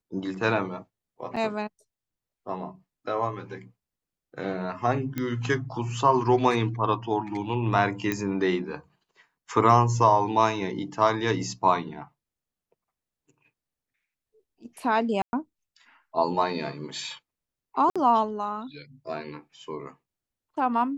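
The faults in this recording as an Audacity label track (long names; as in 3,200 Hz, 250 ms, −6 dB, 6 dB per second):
1.360000	1.370000	drop-out 5.9 ms
5.180000	5.180000	click −16 dBFS
8.120000	8.120000	click −13 dBFS
15.220000	15.330000	drop-out 111 ms
17.900000	17.960000	drop-out 56 ms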